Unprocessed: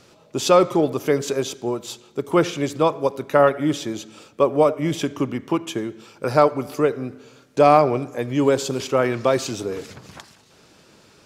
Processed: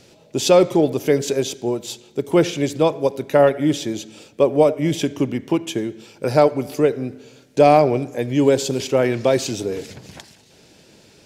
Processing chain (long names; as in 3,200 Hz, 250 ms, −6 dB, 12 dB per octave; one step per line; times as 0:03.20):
parametric band 1,200 Hz −12 dB 0.58 octaves
level +3 dB